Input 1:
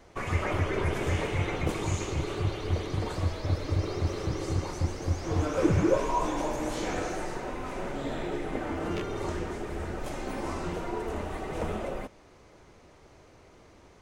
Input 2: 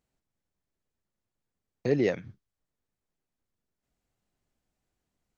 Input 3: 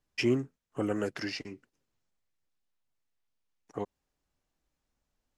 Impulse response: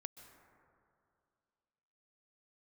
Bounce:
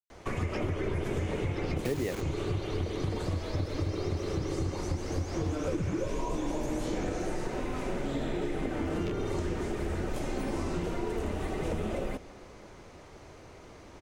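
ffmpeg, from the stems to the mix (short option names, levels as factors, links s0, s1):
-filter_complex "[0:a]acrossover=split=190|520|1800[s0][s1][s2][s3];[s0]acompressor=threshold=0.0282:ratio=4[s4];[s1]acompressor=threshold=0.02:ratio=4[s5];[s2]acompressor=threshold=0.00398:ratio=4[s6];[s3]acompressor=threshold=0.00355:ratio=4[s7];[s4][s5][s6][s7]amix=inputs=4:normalize=0,adelay=100,volume=1.33,asplit=2[s8][s9];[s9]volume=0.562[s10];[1:a]bandreject=f=96.12:t=h:w=4,bandreject=f=192.24:t=h:w=4,bandreject=f=288.36:t=h:w=4,bandreject=f=384.48:t=h:w=4,bandreject=f=480.6:t=h:w=4,acrusher=bits=5:mix=0:aa=0.000001,volume=1.33[s11];[2:a]adelay=350,volume=0.266[s12];[3:a]atrim=start_sample=2205[s13];[s10][s13]afir=irnorm=-1:irlink=0[s14];[s8][s11][s12][s14]amix=inputs=4:normalize=0,acompressor=threshold=0.0447:ratio=10"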